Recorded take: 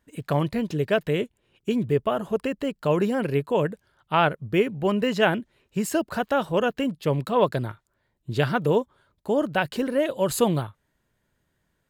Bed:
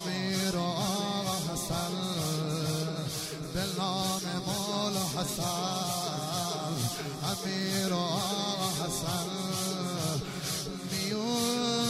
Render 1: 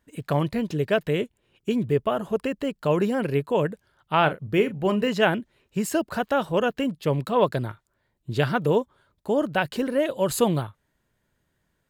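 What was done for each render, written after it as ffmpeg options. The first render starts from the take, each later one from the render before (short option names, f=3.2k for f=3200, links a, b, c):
-filter_complex "[0:a]asettb=1/sr,asplit=3[a][b][c];[a]atrim=end=4.184[d];[b]atrim=start=4.18:end=5.09,asetpts=PTS-STARTPTS,afade=t=in:d=0.004:c=qsin,afade=t=out:st=0.906:d=0.004:c=qsin,asplit=2[e][f];[f]adelay=38,volume=-12dB[g];[e][g]amix=inputs=2:normalize=0,atrim=end_sample=40131[h];[c]atrim=start=5.086[i];[d][h]acrossfade=d=0.004:c1=hsin:c2=qsin[j];[j][i]acrossfade=d=0.004:c1=qsin:c2=hsin"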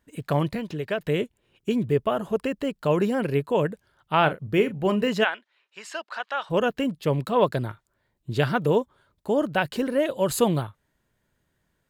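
-filter_complex "[0:a]asettb=1/sr,asplit=3[a][b][c];[a]atrim=end=0.554[d];[b]atrim=start=0.55:end=1,asetpts=PTS-STARTPTS,afade=t=in:d=0.004:c=qsin,afade=t=out:st=0.446:d=0.004:c=qsin,acrossover=split=620|4000[e][f][g];[e]acompressor=threshold=-30dB:ratio=4[h];[f]acompressor=threshold=-27dB:ratio=4[i];[g]acompressor=threshold=-55dB:ratio=4[j];[h][i][j]amix=inputs=3:normalize=0[k];[c]atrim=start=0.996[l];[d][k]acrossfade=d=0.004:c1=hsin:c2=qsin[m];[m][l]acrossfade=d=0.004:c1=qsin:c2=hsin,asplit=3[n][o][p];[n]afade=t=out:st=5.23:d=0.02[q];[o]asuperpass=centerf=2200:order=4:qfactor=0.54,afade=t=in:st=5.23:d=0.02,afade=t=out:st=6.49:d=0.02[r];[p]afade=t=in:st=6.49:d=0.02[s];[q][r][s]amix=inputs=3:normalize=0"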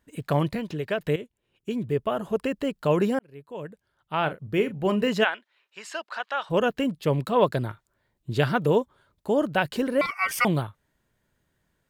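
-filter_complex "[0:a]asettb=1/sr,asplit=3[a][b][c];[a]atrim=end=10.014[d];[b]atrim=start=10.01:end=10.45,asetpts=PTS-STARTPTS,afade=t=in:d=0.004:c=qsin,afade=t=out:st=0.436:d=0.004:c=qsin,aeval=exprs='val(0)*sin(2*PI*1700*n/s)':c=same[e];[c]atrim=start=10.446[f];[d][e]acrossfade=d=0.004:c1=hsin:c2=qsin[g];[g][f]acrossfade=d=0.004:c1=qsin:c2=hsin,asplit=3[h][i][j];[h]atrim=end=1.16,asetpts=PTS-STARTPTS,afade=t=out:st=1.156:d=0.004:c=hsin:silence=0.237137[k];[i]atrim=start=1.16:end=3.19,asetpts=PTS-STARTPTS,afade=t=in:d=1.35:silence=0.237137,afade=t=out:st=2.026:d=0.004:c=hsin[l];[j]atrim=start=3.19,asetpts=PTS-STARTPTS,afade=t=in:d=1.9[m];[k][l][m]concat=n=3:v=0:a=1"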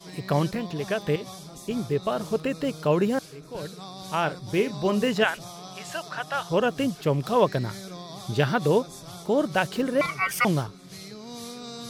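-filter_complex "[1:a]volume=-9.5dB[a];[0:a][a]amix=inputs=2:normalize=0"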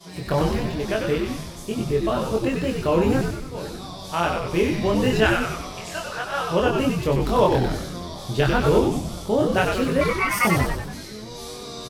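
-filter_complex "[0:a]asplit=2[a][b];[b]adelay=23,volume=-2dB[c];[a][c]amix=inputs=2:normalize=0,asplit=2[d][e];[e]asplit=8[f][g][h][i][j][k][l][m];[f]adelay=94,afreqshift=-94,volume=-4dB[n];[g]adelay=188,afreqshift=-188,volume=-8.7dB[o];[h]adelay=282,afreqshift=-282,volume=-13.5dB[p];[i]adelay=376,afreqshift=-376,volume=-18.2dB[q];[j]adelay=470,afreqshift=-470,volume=-22.9dB[r];[k]adelay=564,afreqshift=-564,volume=-27.7dB[s];[l]adelay=658,afreqshift=-658,volume=-32.4dB[t];[m]adelay=752,afreqshift=-752,volume=-37.1dB[u];[n][o][p][q][r][s][t][u]amix=inputs=8:normalize=0[v];[d][v]amix=inputs=2:normalize=0"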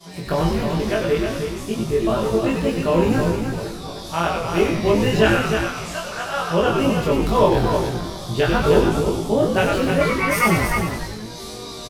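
-filter_complex "[0:a]asplit=2[a][b];[b]adelay=18,volume=-3.5dB[c];[a][c]amix=inputs=2:normalize=0,asplit=2[d][e];[e]aecho=0:1:312:0.501[f];[d][f]amix=inputs=2:normalize=0"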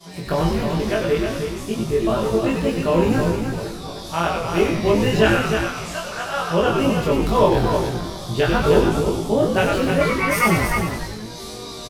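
-af anull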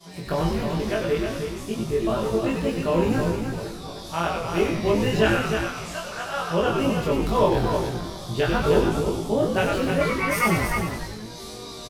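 -af "volume=-4dB"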